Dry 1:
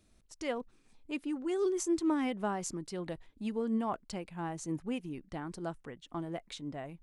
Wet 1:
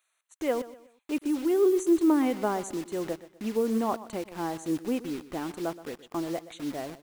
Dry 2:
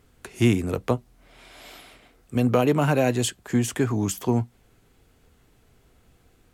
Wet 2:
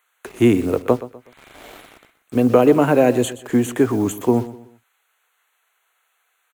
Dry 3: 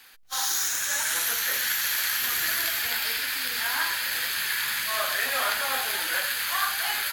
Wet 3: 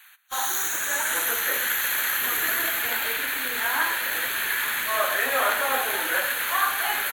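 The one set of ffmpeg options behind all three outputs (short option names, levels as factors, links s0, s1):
-filter_complex "[0:a]firequalizer=gain_entry='entry(170,0);entry(270,9);entry(470,10);entry(680,7);entry(4000,-2);entry(15000,4)':delay=0.05:min_phase=1,acrossover=split=1000[s0][s1];[s0]acrusher=bits=6:mix=0:aa=0.000001[s2];[s1]asuperstop=centerf=5100:order=8:qfactor=3.3[s3];[s2][s3]amix=inputs=2:normalize=0,aecho=1:1:124|248|372:0.158|0.0571|0.0205,volume=0.891"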